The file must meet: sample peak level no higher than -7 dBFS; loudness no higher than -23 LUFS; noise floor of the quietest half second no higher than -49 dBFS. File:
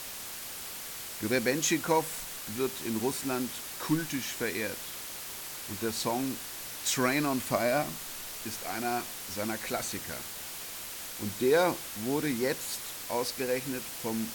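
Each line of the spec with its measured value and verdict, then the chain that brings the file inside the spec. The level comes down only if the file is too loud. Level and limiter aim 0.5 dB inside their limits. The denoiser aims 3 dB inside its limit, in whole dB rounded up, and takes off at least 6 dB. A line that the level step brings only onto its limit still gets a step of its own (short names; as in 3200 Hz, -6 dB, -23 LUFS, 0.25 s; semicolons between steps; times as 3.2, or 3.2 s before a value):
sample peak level -13.0 dBFS: OK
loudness -32.0 LUFS: OK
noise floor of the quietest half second -41 dBFS: fail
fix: denoiser 11 dB, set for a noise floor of -41 dBFS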